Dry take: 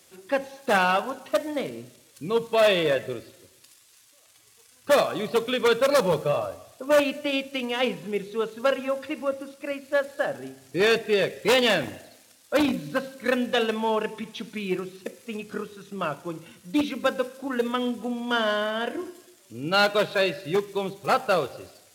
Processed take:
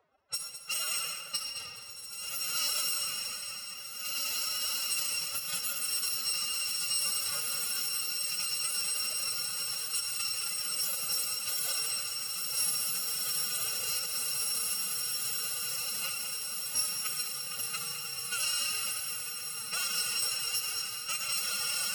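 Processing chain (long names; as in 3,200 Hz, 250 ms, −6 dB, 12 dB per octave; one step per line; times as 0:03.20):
samples in bit-reversed order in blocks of 256 samples
low-pass that shuts in the quiet parts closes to 870 Hz, open at −19 dBFS
feedback delay with all-pass diffusion 1,917 ms, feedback 61%, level −3.5 dB
on a send at −7.5 dB: convolution reverb RT60 1.9 s, pre-delay 62 ms
on the sum: brickwall limiter −18.5 dBFS, peak gain reduction 11 dB
dynamic equaliser 9,700 Hz, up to +6 dB, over −43 dBFS, Q 0.98
reversed playback
upward compression, threshold −31 dBFS
reversed playback
phase-vocoder pitch shift with formants kept +11.5 semitones
high-pass filter 360 Hz 6 dB per octave
feedback echo at a low word length 210 ms, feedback 35%, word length 9 bits, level −10 dB
level −5.5 dB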